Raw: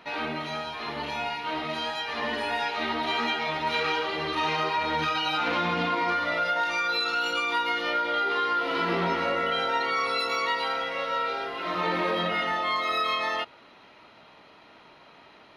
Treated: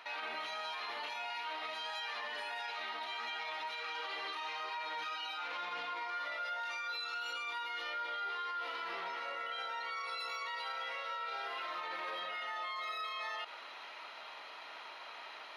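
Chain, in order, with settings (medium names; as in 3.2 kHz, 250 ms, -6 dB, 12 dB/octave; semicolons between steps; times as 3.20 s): high-pass 790 Hz 12 dB/octave; reverse; compression, threshold -40 dBFS, peak gain reduction 15 dB; reverse; peak limiter -38 dBFS, peak gain reduction 9.5 dB; trim +5.5 dB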